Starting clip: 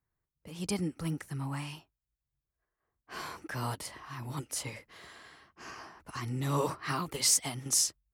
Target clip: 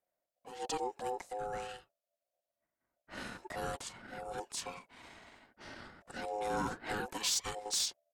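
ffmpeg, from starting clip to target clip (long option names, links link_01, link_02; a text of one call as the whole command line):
ffmpeg -i in.wav -af "asoftclip=type=tanh:threshold=-24dB,aeval=exprs='val(0)*sin(2*PI*790*n/s)':channel_layout=same,asetrate=35002,aresample=44100,atempo=1.25992" out.wav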